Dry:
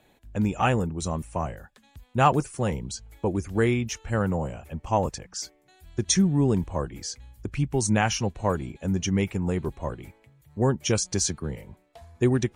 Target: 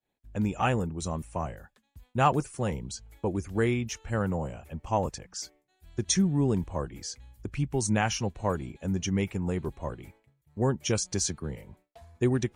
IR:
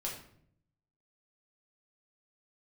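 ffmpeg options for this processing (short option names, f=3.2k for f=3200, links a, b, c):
-af "agate=range=-33dB:threshold=-49dB:ratio=3:detection=peak,volume=-3.5dB"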